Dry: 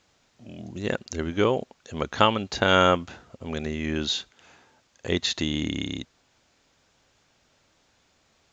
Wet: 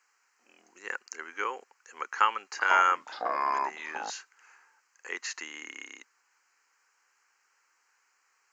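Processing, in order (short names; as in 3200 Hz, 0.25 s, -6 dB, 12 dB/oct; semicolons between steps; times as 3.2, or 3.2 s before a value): HPF 560 Hz 24 dB/oct; fixed phaser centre 1500 Hz, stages 4; 2.08–4.1 echoes that change speed 0.452 s, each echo -5 st, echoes 2, each echo -6 dB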